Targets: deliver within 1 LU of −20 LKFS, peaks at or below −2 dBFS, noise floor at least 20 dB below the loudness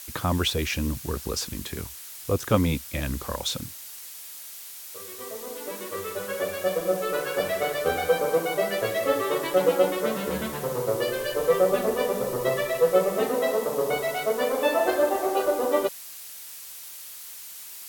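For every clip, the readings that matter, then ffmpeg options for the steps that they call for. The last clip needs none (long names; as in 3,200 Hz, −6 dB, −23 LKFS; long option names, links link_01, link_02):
background noise floor −41 dBFS; target noise floor −46 dBFS; integrated loudness −26.0 LKFS; sample peak −3.5 dBFS; target loudness −20.0 LKFS
→ -af "afftdn=noise_reduction=6:noise_floor=-41"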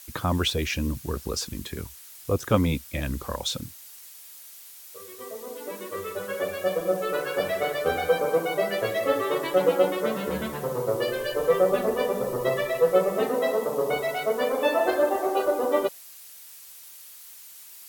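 background noise floor −46 dBFS; integrated loudness −26.0 LKFS; sample peak −3.5 dBFS; target loudness −20.0 LKFS
→ -af "volume=6dB,alimiter=limit=-2dB:level=0:latency=1"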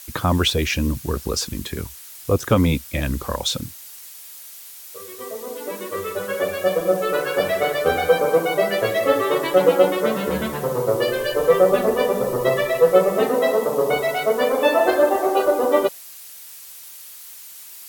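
integrated loudness −20.0 LKFS; sample peak −2.0 dBFS; background noise floor −40 dBFS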